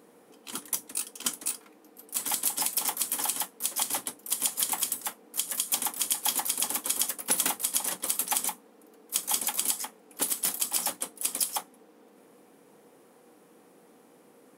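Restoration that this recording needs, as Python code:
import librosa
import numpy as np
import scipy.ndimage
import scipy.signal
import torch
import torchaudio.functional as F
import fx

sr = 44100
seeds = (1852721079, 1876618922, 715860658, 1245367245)

y = fx.fix_declip(x, sr, threshold_db=-10.5)
y = fx.notch(y, sr, hz=480.0, q=30.0)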